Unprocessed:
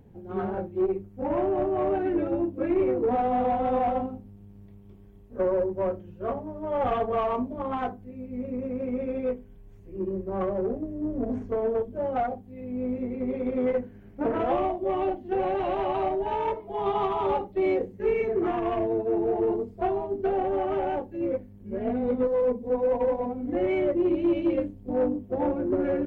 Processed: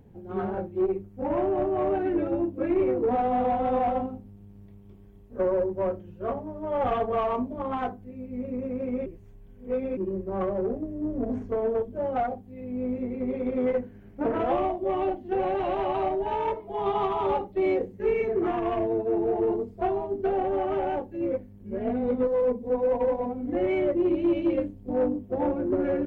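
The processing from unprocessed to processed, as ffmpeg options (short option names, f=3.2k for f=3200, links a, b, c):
-filter_complex "[0:a]asplit=3[a][b][c];[a]atrim=end=9.062[d];[b]atrim=start=9.058:end=9.972,asetpts=PTS-STARTPTS,areverse[e];[c]atrim=start=9.968[f];[d][e]acrossfade=d=0.004:c1=hsin:c2=hsin[g];[g][f]acrossfade=d=0.004:c1=hsin:c2=hsin"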